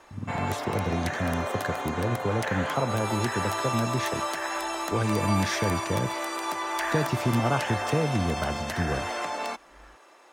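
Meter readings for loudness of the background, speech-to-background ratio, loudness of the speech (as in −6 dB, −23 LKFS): −31.0 LKFS, 1.0 dB, −30.0 LKFS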